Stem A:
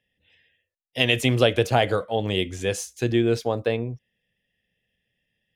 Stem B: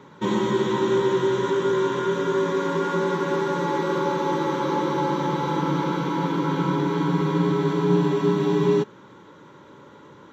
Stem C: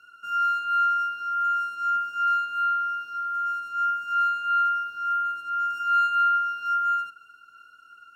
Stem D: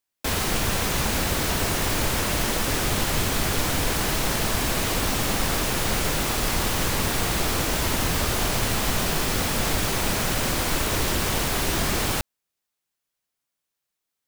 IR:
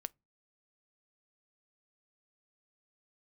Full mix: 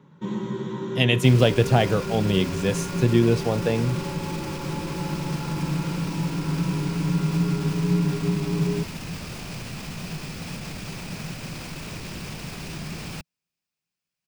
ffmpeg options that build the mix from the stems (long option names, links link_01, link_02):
-filter_complex "[0:a]volume=-2dB[link_01];[1:a]volume=-12.5dB[link_02];[2:a]adelay=1250,volume=-17dB[link_03];[3:a]equalizer=frequency=2500:width_type=o:width=0.33:gain=8,equalizer=frequency=5000:width_type=o:width=0.33:gain=6,equalizer=frequency=12500:width_type=o:width=0.33:gain=-9,adelay=1000,volume=-5.5dB[link_04];[link_03][link_04]amix=inputs=2:normalize=0,alimiter=level_in=5dB:limit=-24dB:level=0:latency=1,volume=-5dB,volume=0dB[link_05];[link_01][link_02][link_05]amix=inputs=3:normalize=0,equalizer=frequency=160:width=1.5:gain=15"